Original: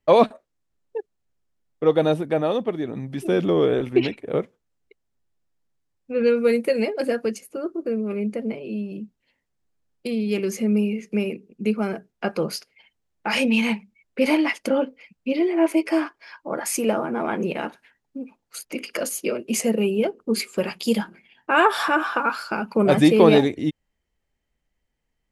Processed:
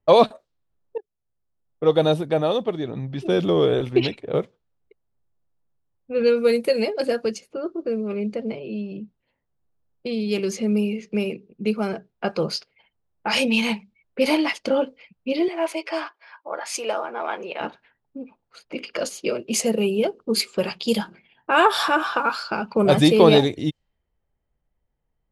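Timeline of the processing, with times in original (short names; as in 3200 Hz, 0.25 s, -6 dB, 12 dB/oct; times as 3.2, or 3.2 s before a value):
0.98–1.97 fade in linear, from -14 dB
15.48–17.61 HPF 600 Hz
whole clip: low-pass opened by the level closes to 1400 Hz, open at -18.5 dBFS; graphic EQ 125/250/2000/4000 Hz +3/-5/-5/+6 dB; gain +2 dB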